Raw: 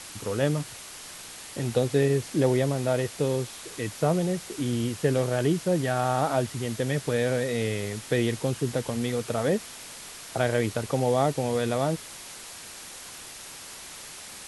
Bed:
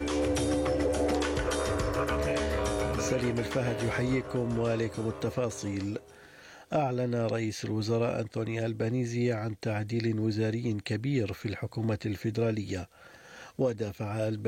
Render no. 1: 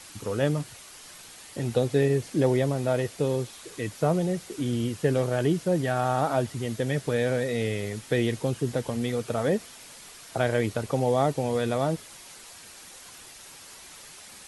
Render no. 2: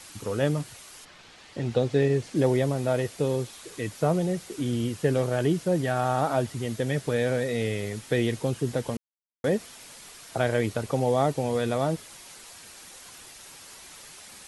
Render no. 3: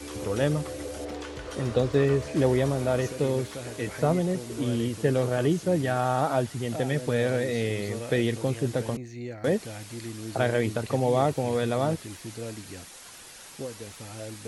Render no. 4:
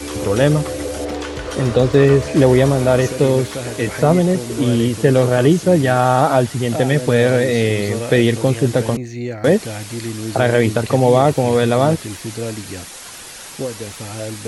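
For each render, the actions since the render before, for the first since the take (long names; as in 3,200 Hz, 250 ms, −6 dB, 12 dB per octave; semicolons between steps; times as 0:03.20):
broadband denoise 6 dB, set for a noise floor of −43 dBFS
0:01.04–0:02.34: low-pass filter 3,400 Hz → 8,100 Hz; 0:08.97–0:09.44: silence
mix in bed −8.5 dB
level +11.5 dB; brickwall limiter −1 dBFS, peak gain reduction 3 dB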